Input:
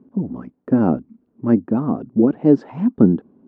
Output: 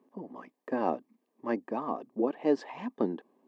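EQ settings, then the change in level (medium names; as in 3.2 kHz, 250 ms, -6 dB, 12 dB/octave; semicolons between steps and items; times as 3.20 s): high-pass 410 Hz 12 dB/octave; Butterworth band-stop 1.4 kHz, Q 4.2; tilt shelf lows -7.5 dB, about 760 Hz; -3.5 dB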